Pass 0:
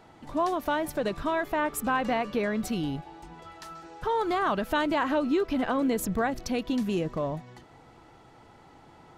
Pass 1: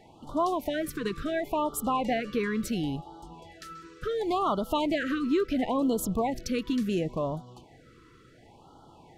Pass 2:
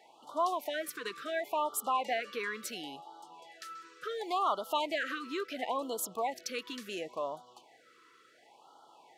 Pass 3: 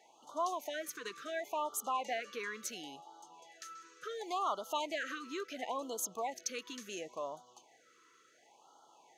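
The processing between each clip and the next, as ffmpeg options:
-af "afftfilt=real='re*(1-between(b*sr/1024,690*pow(2100/690,0.5+0.5*sin(2*PI*0.71*pts/sr))/1.41,690*pow(2100/690,0.5+0.5*sin(2*PI*0.71*pts/sr))*1.41))':imag='im*(1-between(b*sr/1024,690*pow(2100/690,0.5+0.5*sin(2*PI*0.71*pts/sr))/1.41,690*pow(2100/690,0.5+0.5*sin(2*PI*0.71*pts/sr))*1.41))':win_size=1024:overlap=0.75"
-af "highpass=660,volume=-1dB"
-af "equalizer=f=6.4k:w=6.7:g=15,volume=-4.5dB"

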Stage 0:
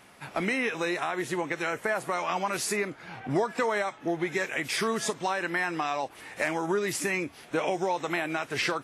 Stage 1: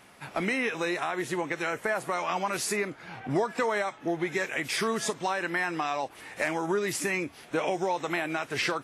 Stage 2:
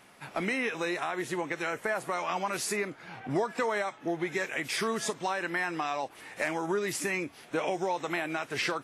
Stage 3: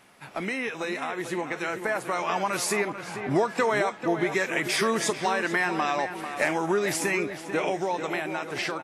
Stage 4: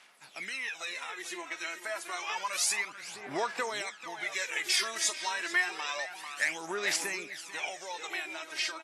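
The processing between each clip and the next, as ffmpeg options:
-af "acontrast=75,volume=-7dB"
-af "equalizer=f=65:w=1.3:g=-6,volume=-2dB"
-filter_complex "[0:a]dynaudnorm=f=810:g=5:m=5.5dB,asplit=2[a][b];[b]adelay=443,lowpass=f=2.9k:p=1,volume=-9dB,asplit=2[c][d];[d]adelay=443,lowpass=f=2.9k:p=1,volume=0.49,asplit=2[e][f];[f]adelay=443,lowpass=f=2.9k:p=1,volume=0.49,asplit=2[g][h];[h]adelay=443,lowpass=f=2.9k:p=1,volume=0.49,asplit=2[i][j];[j]adelay=443,lowpass=f=2.9k:p=1,volume=0.49,asplit=2[k][l];[l]adelay=443,lowpass=f=2.9k:p=1,volume=0.49[m];[a][c][e][g][i][k][m]amix=inputs=7:normalize=0"
-af "aphaser=in_gain=1:out_gain=1:delay=3.2:decay=0.62:speed=0.29:type=sinusoidal,bandpass=f=5.6k:t=q:w=0.67:csg=0"

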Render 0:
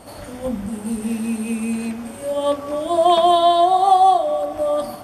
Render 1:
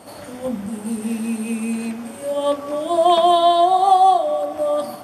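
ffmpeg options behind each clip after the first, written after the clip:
-af "highpass=130"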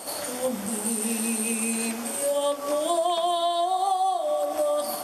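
-af "bass=f=250:g=-12,treble=f=4k:g=10,acompressor=threshold=-25dB:ratio=8,volume=3dB"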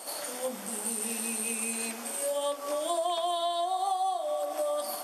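-af "highpass=f=450:p=1,volume=-4dB"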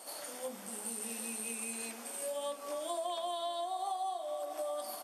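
-af "aecho=1:1:771|1542|2313:0.119|0.0404|0.0137,volume=-7.5dB"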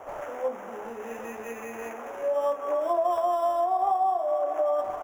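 -filter_complex "[0:a]firequalizer=gain_entry='entry(190,0);entry(390,13);entry(1200,12);entry(10000,-26)':delay=0.05:min_phase=1,acrossover=split=160|750|2000[a][b][c][d];[d]acrusher=samples=10:mix=1:aa=0.000001[e];[a][b][c][e]amix=inputs=4:normalize=0"

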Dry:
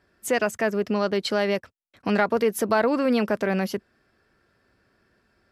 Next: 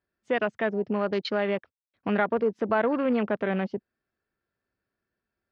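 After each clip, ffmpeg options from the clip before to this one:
-af "afwtdn=0.0224,lowpass=f=4.7k:w=0.5412,lowpass=f=4.7k:w=1.3066,volume=-3dB"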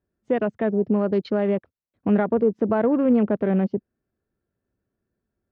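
-af "tiltshelf=f=830:g=9.5"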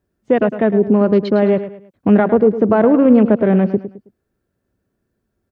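-af "aecho=1:1:107|214|321:0.251|0.0854|0.029,volume=8dB"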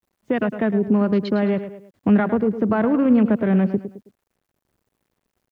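-filter_complex "[0:a]acrossover=split=290|870[a][b][c];[b]acompressor=threshold=-24dB:ratio=8[d];[a][d][c]amix=inputs=3:normalize=0,acrusher=bits=10:mix=0:aa=0.000001,volume=-2.5dB"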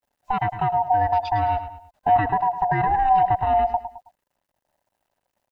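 -af "afftfilt=real='real(if(lt(b,1008),b+24*(1-2*mod(floor(b/24),2)),b),0)':imag='imag(if(lt(b,1008),b+24*(1-2*mod(floor(b/24),2)),b),0)':win_size=2048:overlap=0.75,volume=-2dB"

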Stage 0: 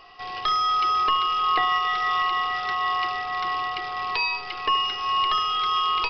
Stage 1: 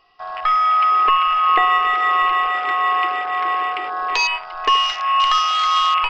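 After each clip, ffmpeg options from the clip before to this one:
-af "afwtdn=0.0355,volume=7dB"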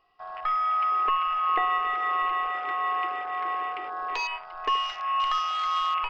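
-af "equalizer=f=5.7k:w=0.46:g=-7.5,volume=-8dB"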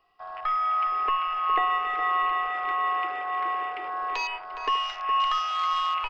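-filter_complex "[0:a]acrossover=split=190|1400[a][b][c];[a]acrusher=samples=36:mix=1:aa=0.000001[d];[d][b][c]amix=inputs=3:normalize=0,asplit=2[e][f];[f]adelay=414,volume=-9dB,highshelf=f=4k:g=-9.32[g];[e][g]amix=inputs=2:normalize=0"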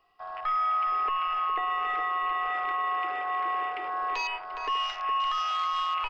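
-af "alimiter=limit=-21.5dB:level=0:latency=1:release=23"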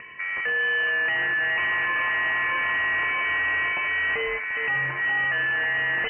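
-af "aeval=exprs='0.0891*(cos(1*acos(clip(val(0)/0.0891,-1,1)))-cos(1*PI/2))+0.02*(cos(4*acos(clip(val(0)/0.0891,-1,1)))-cos(4*PI/2))+0.0224*(cos(5*acos(clip(val(0)/0.0891,-1,1)))-cos(5*PI/2))+0.0178*(cos(6*acos(clip(val(0)/0.0891,-1,1)))-cos(6*PI/2))':c=same,acompressor=mode=upward:threshold=-32dB:ratio=2.5,lowpass=f=2.6k:t=q:w=0.5098,lowpass=f=2.6k:t=q:w=0.6013,lowpass=f=2.6k:t=q:w=0.9,lowpass=f=2.6k:t=q:w=2.563,afreqshift=-3000,volume=3dB"

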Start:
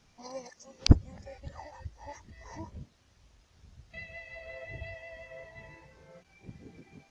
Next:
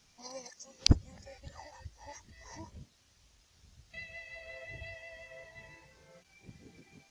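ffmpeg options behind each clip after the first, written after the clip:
-af "highshelf=f=2.6k:g=11.5,volume=-5.5dB"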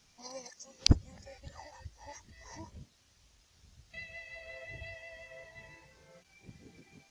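-af anull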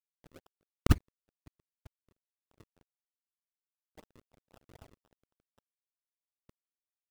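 -af "acrusher=samples=39:mix=1:aa=0.000001:lfo=1:lforange=39:lforate=3.9,aeval=exprs='sgn(val(0))*max(abs(val(0))-0.0075,0)':c=same"

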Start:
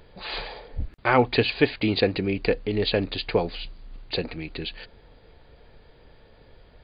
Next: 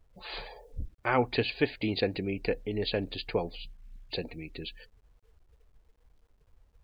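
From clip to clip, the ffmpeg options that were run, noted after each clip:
-af "afftdn=nr=34:nf=-40,acrusher=bits=10:mix=0:aa=0.000001,volume=-7dB"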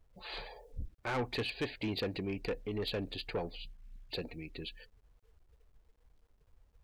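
-af "asoftclip=type=tanh:threshold=-26dB,volume=-3dB"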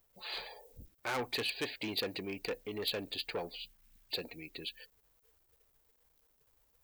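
-af "aemphasis=mode=production:type=bsi"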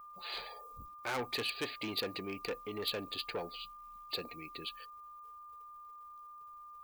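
-af "aeval=exprs='val(0)+0.00398*sin(2*PI*1200*n/s)':c=same,volume=-1dB"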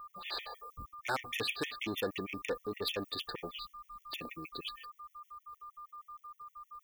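-af "afftfilt=real='re*gt(sin(2*PI*6.4*pts/sr)*(1-2*mod(floor(b*sr/1024/1800),2)),0)':imag='im*gt(sin(2*PI*6.4*pts/sr)*(1-2*mod(floor(b*sr/1024/1800),2)),0)':win_size=1024:overlap=0.75,volume=4.5dB"

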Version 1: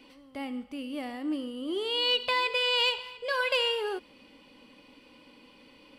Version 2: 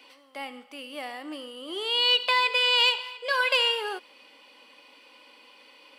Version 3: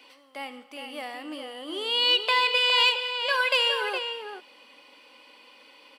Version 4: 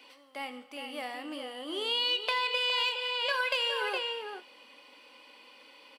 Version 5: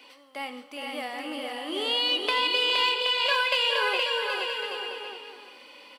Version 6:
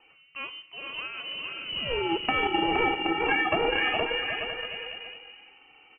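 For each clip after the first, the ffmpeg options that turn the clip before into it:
-af "highpass=630,volume=5dB"
-filter_complex "[0:a]asplit=2[a][b];[b]adelay=414,volume=-6dB,highshelf=f=4k:g=-9.32[c];[a][c]amix=inputs=2:normalize=0"
-filter_complex "[0:a]acompressor=threshold=-25dB:ratio=6,aeval=exprs='0.2*(cos(1*acos(clip(val(0)/0.2,-1,1)))-cos(1*PI/2))+0.0141*(cos(3*acos(clip(val(0)/0.2,-1,1)))-cos(3*PI/2))':c=same,asplit=2[a][b];[b]adelay=28,volume=-13.5dB[c];[a][c]amix=inputs=2:normalize=0"
-af "aecho=1:1:470|775.5|974.1|1103|1187:0.631|0.398|0.251|0.158|0.1,volume=3.5dB"
-af "adynamicsmooth=sensitivity=1.5:basefreq=1.2k,lowpass=f=2.8k:t=q:w=0.5098,lowpass=f=2.8k:t=q:w=0.6013,lowpass=f=2.8k:t=q:w=0.9,lowpass=f=2.8k:t=q:w=2.563,afreqshift=-3300,tiltshelf=f=800:g=6,volume=4.5dB"

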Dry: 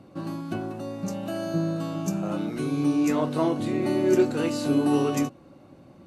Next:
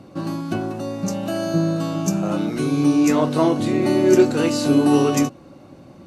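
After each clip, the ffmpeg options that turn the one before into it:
-af "equalizer=f=5.7k:w=1.5:g=4,volume=6.5dB"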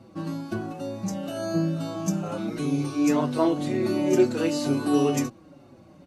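-filter_complex "[0:a]asplit=2[a][b];[b]adelay=5.5,afreqshift=-2.1[c];[a][c]amix=inputs=2:normalize=1,volume=-3.5dB"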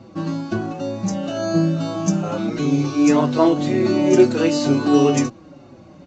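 -af "volume=7dB" -ar 16000 -c:a pcm_mulaw

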